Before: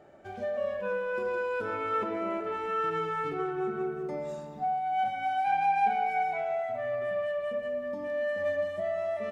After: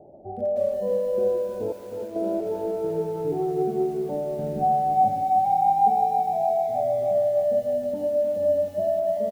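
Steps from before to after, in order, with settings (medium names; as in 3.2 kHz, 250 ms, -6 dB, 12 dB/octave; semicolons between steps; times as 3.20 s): steep low-pass 800 Hz 48 dB/octave; 1.72–2.16 s: expander -25 dBFS; 4.39–5.21 s: bass shelf 340 Hz +10.5 dB; delay 483 ms -14.5 dB; bit-crushed delay 311 ms, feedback 55%, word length 9-bit, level -8 dB; trim +7.5 dB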